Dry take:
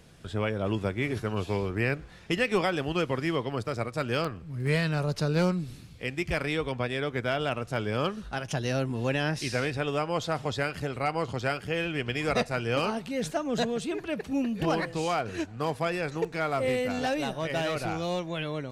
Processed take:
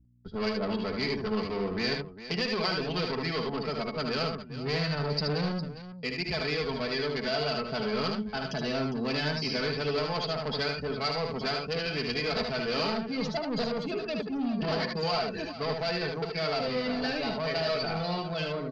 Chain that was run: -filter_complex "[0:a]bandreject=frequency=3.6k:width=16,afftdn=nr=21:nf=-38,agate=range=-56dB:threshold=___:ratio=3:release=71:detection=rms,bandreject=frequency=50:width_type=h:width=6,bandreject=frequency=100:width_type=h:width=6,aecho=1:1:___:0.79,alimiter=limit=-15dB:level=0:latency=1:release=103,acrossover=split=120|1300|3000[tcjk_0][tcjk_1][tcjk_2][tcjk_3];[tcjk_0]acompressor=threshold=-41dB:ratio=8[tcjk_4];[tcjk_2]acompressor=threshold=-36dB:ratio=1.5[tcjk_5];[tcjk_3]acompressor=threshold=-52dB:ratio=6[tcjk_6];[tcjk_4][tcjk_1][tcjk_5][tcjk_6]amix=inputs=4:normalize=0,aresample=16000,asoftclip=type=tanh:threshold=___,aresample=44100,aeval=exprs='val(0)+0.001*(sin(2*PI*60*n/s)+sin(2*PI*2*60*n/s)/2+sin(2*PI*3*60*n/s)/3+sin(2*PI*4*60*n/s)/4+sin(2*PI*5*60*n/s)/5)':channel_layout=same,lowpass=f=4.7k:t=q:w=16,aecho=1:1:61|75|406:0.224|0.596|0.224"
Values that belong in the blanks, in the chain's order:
-37dB, 4.6, -28.5dB